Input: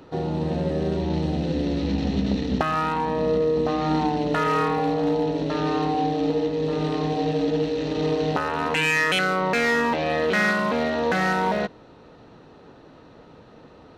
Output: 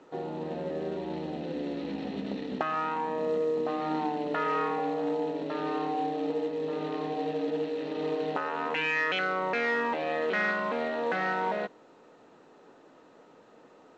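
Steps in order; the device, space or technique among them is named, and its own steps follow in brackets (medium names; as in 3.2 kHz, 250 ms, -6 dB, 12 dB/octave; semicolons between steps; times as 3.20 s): telephone (band-pass 280–3100 Hz; trim -6 dB; A-law 128 kbps 16 kHz)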